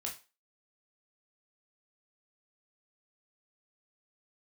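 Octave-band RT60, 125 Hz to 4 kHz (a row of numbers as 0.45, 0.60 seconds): 0.20, 0.25, 0.30, 0.30, 0.30, 0.30 seconds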